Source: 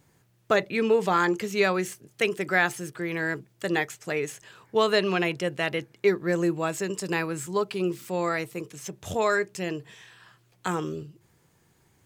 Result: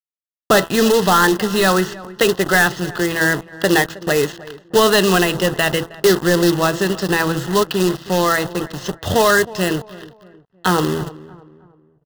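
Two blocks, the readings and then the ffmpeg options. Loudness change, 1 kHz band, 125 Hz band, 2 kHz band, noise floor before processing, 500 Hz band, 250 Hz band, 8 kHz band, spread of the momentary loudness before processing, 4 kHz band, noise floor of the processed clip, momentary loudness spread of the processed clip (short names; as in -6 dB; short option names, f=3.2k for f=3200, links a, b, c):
+10.0 dB, +10.5 dB, +12.0 dB, +10.0 dB, -65 dBFS, +9.0 dB, +11.0 dB, +14.5 dB, 12 LU, +14.0 dB, -62 dBFS, 10 LU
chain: -filter_complex "[0:a]bandreject=f=165.8:t=h:w=4,bandreject=f=331.6:t=h:w=4,bandreject=f=497.4:t=h:w=4,bandreject=f=663.2:t=h:w=4,bandreject=f=829:t=h:w=4,bandreject=f=994.8:t=h:w=4,bandreject=f=1.1606k:t=h:w=4,bandreject=f=1.3264k:t=h:w=4,bandreject=f=1.4922k:t=h:w=4,apsyclip=19.5dB,adynamicequalizer=threshold=0.0794:dfrequency=430:dqfactor=1.2:tfrequency=430:tqfactor=1.2:attack=5:release=100:ratio=0.375:range=2:mode=cutabove:tftype=bell,asplit=2[a][b];[b]acompressor=threshold=-19dB:ratio=8,volume=-1dB[c];[a][c]amix=inputs=2:normalize=0,acrusher=bits=2:mix=0:aa=0.5,lowpass=f=4.7k:w=0.5412,lowpass=f=4.7k:w=1.3066,acrusher=bits=2:mode=log:mix=0:aa=0.000001,asuperstop=centerf=2300:order=4:qfactor=3.7,asplit=2[d][e];[e]adelay=316,lowpass=f=1.6k:p=1,volume=-18dB,asplit=2[f][g];[g]adelay=316,lowpass=f=1.6k:p=1,volume=0.4,asplit=2[h][i];[i]adelay=316,lowpass=f=1.6k:p=1,volume=0.4[j];[f][h][j]amix=inputs=3:normalize=0[k];[d][k]amix=inputs=2:normalize=0,volume=-8dB"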